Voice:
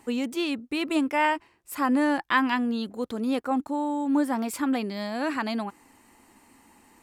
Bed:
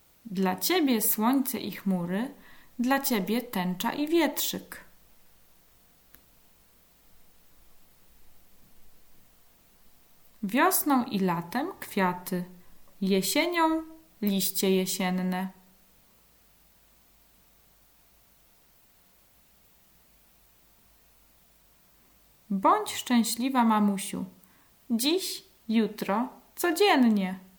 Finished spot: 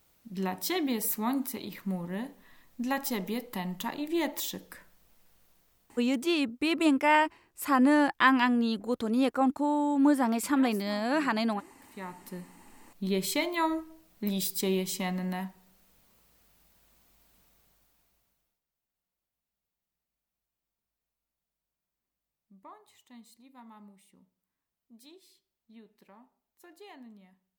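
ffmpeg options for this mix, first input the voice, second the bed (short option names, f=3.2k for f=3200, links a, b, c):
-filter_complex "[0:a]adelay=5900,volume=0.5dB[a];[1:a]volume=13.5dB,afade=t=out:st=5.46:d=0.92:silence=0.133352,afade=t=in:st=11.8:d=1.34:silence=0.112202,afade=t=out:st=17.39:d=1.22:silence=0.0595662[b];[a][b]amix=inputs=2:normalize=0"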